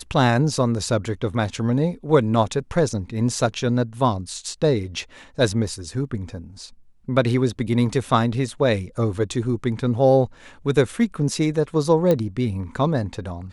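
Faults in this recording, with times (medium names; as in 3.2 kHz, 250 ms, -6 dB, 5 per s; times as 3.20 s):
12.11 s: pop -9 dBFS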